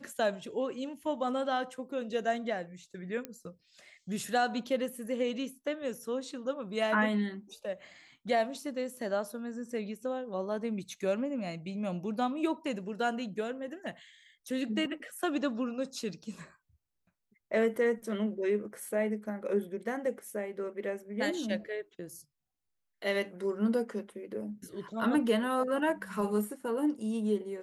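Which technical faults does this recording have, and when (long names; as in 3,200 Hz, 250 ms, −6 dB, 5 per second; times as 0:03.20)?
0:03.25: click −22 dBFS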